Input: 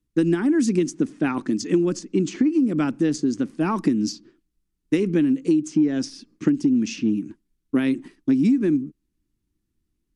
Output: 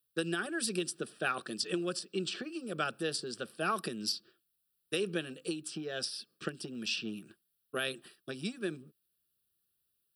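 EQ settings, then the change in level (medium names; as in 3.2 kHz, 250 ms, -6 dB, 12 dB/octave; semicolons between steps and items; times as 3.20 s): high-pass 71 Hz; RIAA curve recording; static phaser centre 1.4 kHz, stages 8; -1.5 dB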